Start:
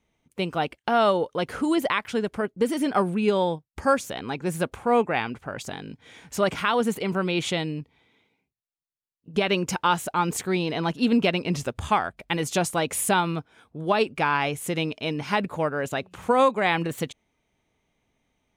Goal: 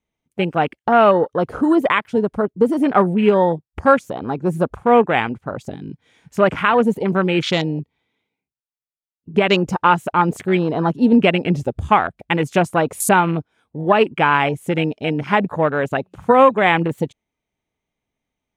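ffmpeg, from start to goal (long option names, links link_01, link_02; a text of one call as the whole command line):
ffmpeg -i in.wav -af "afwtdn=0.0251,volume=8dB" out.wav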